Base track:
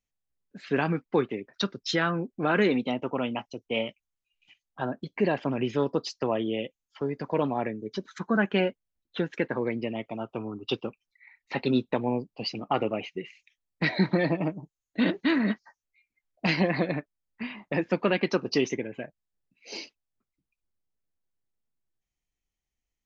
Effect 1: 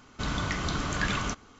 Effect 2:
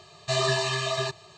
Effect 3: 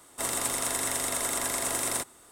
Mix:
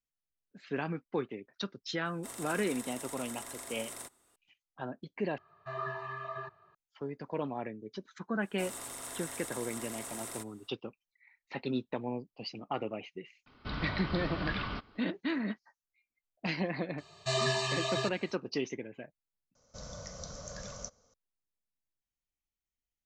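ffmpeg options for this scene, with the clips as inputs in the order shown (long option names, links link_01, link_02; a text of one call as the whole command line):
ffmpeg -i bed.wav -i cue0.wav -i cue1.wav -i cue2.wav -filter_complex "[3:a]asplit=2[link_01][link_02];[2:a]asplit=2[link_03][link_04];[1:a]asplit=2[link_05][link_06];[0:a]volume=-9dB[link_07];[link_03]lowpass=frequency=1400:width_type=q:width=6.9[link_08];[link_02]alimiter=limit=-20.5dB:level=0:latency=1:release=16[link_09];[link_05]aresample=11025,aresample=44100[link_10];[link_06]firequalizer=gain_entry='entry(190,0);entry(350,-15);entry(520,15);entry(810,-3);entry(2800,-12);entry(5700,14);entry(9600,-8)':delay=0.05:min_phase=1[link_11];[link_07]asplit=3[link_12][link_13][link_14];[link_12]atrim=end=5.384[link_15];[link_08]atrim=end=1.37,asetpts=PTS-STARTPTS,volume=-16.5dB[link_16];[link_13]atrim=start=6.746:end=19.554[link_17];[link_11]atrim=end=1.59,asetpts=PTS-STARTPTS,volume=-15.5dB[link_18];[link_14]atrim=start=21.136[link_19];[link_01]atrim=end=2.31,asetpts=PTS-STARTPTS,volume=-15dB,afade=type=in:duration=0.004:curve=hsin,afade=type=out:start_time=2.306:duration=0.004:curve=hsin,adelay=2050[link_20];[link_09]atrim=end=2.31,asetpts=PTS-STARTPTS,volume=-11.5dB,afade=type=in:duration=0.05,afade=type=out:start_time=2.26:duration=0.05,adelay=8400[link_21];[link_10]atrim=end=1.59,asetpts=PTS-STARTPTS,volume=-6.5dB,afade=type=in:duration=0.004:curve=hsin,afade=type=out:start_time=1.586:duration=0.004:curve=hsin,adelay=13460[link_22];[link_04]atrim=end=1.37,asetpts=PTS-STARTPTS,volume=-5.5dB,afade=type=in:duration=0.004:curve=hsin,afade=type=out:start_time=1.366:duration=0.004:curve=hsin,adelay=16980[link_23];[link_15][link_16]acrossfade=duration=0.004:curve1=hsin:curve2=hsin[link_24];[link_24][link_17]acrossfade=duration=0.004:curve1=hsin:curve2=hsin[link_25];[link_25][link_18]acrossfade=duration=0.004:curve1=hsin:curve2=hsin[link_26];[link_26][link_19]acrossfade=duration=0.004:curve1=hsin:curve2=hsin[link_27];[link_27][link_20][link_21][link_22][link_23]amix=inputs=5:normalize=0" out.wav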